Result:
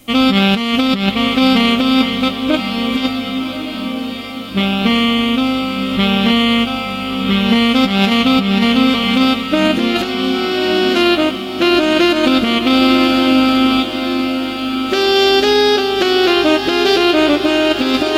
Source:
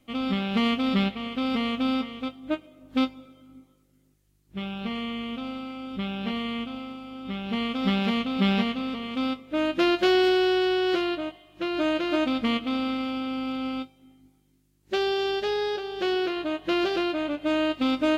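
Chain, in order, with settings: high shelf 4400 Hz +11.5 dB; negative-ratio compressor -26 dBFS, ratio -0.5; on a send: diffused feedback echo 1.191 s, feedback 55%, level -8 dB; on the sum: maximiser +15.5 dB; gain -1 dB

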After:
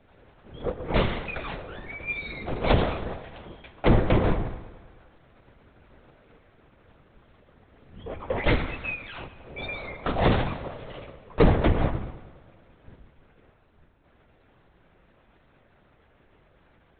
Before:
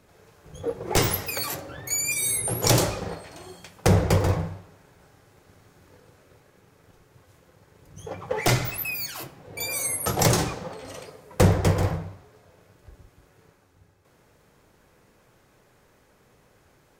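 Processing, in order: LPC vocoder at 8 kHz whisper; multi-head echo 0.106 s, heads first and second, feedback 47%, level -21 dB

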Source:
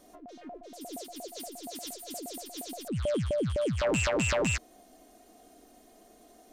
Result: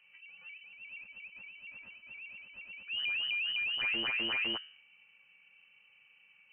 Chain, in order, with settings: air absorption 310 m; de-hum 77.11 Hz, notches 22; inverted band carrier 3000 Hz; gain -4.5 dB

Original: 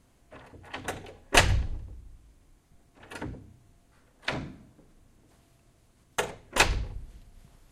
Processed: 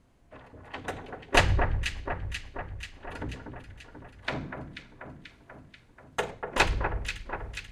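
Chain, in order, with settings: high shelf 5300 Hz -12 dB; echo with dull and thin repeats by turns 0.243 s, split 1800 Hz, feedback 77%, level -6 dB

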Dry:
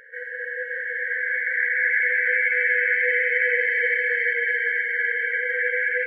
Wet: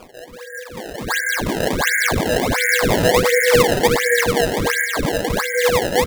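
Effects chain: low shelf 420 Hz -9.5 dB; upward compressor, threshold -27 dBFS; LPF 1800 Hz 6 dB/oct; bell 570 Hz +11.5 dB 1.9 oct; on a send: early reflections 27 ms -4 dB, 70 ms -16 dB; on the sum: shoebox room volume 140 m³, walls furnished, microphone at 1.7 m; spectral noise reduction 14 dB; decimation with a swept rate 22×, swing 160% 1.4 Hz

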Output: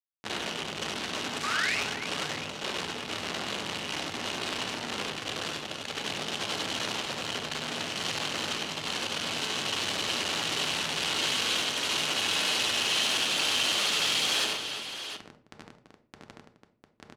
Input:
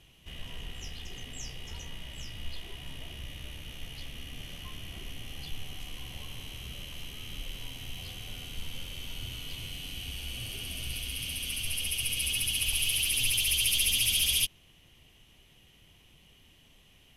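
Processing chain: elliptic band-stop 550–2600 Hz, stop band 80 dB; bell 2000 Hz +11.5 dB 0.28 oct; in parallel at +2 dB: negative-ratio compressor -37 dBFS, ratio -0.5; on the sum: limiter -22.5 dBFS, peak gain reduction 10 dB; harmoniser +5 st -4 dB, +7 st -12 dB; Schmitt trigger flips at -37 dBFS; painted sound rise, 1.43–1.78, 1100–2800 Hz -31 dBFS; hard clip -27 dBFS, distortion -22 dB; BPF 250–6300 Hz; tapped delay 72/97/144/261/335/701 ms -5.5/-5.5/-18.5/-19/-11.5/-11 dB; on a send at -7 dB: reverb RT60 0.50 s, pre-delay 3 ms; on the sum: core saturation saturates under 4000 Hz; gain +5 dB

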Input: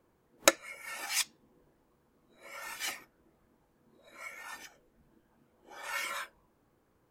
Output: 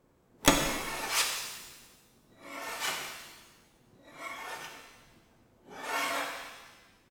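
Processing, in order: harmoniser -12 st -1 dB, +7 st -15 dB; one-sided clip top -23 dBFS; shimmer reverb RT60 1.2 s, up +7 st, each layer -8 dB, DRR 1.5 dB

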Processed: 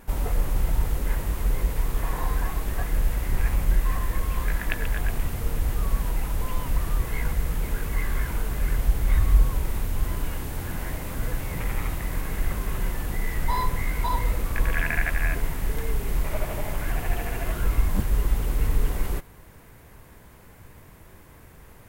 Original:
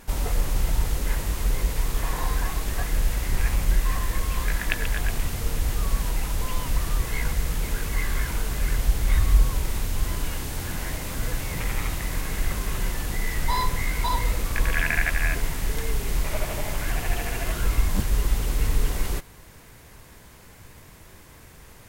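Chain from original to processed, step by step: bell 5400 Hz -9 dB 2.1 oct

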